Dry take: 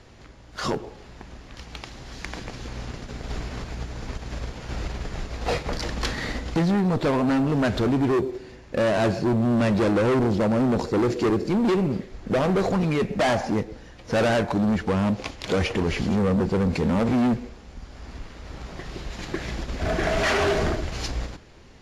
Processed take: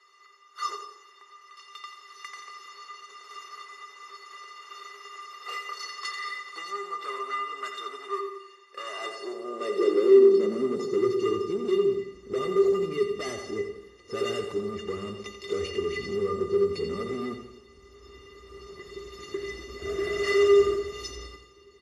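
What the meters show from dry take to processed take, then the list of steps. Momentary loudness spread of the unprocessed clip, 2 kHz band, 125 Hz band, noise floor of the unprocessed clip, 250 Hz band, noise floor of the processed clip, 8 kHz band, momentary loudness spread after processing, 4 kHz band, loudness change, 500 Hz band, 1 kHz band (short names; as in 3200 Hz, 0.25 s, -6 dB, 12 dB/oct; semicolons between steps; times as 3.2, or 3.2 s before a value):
18 LU, -6.5 dB, -19.0 dB, -46 dBFS, -10.0 dB, -55 dBFS, n/a, 21 LU, -4.5 dB, -3.0 dB, +0.5 dB, -6.0 dB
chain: dynamic EQ 960 Hz, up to -7 dB, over -47 dBFS, Q 5; high-pass sweep 1100 Hz -> 64 Hz, 8.71–11.82; resonator 400 Hz, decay 0.15 s, harmonics odd, mix 100%; in parallel at -9 dB: hard clip -31.5 dBFS, distortion -7 dB; on the sum: feedback echo 87 ms, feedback 44%, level -8.5 dB; Schroeder reverb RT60 1.1 s, DRR 12.5 dB; gain +6.5 dB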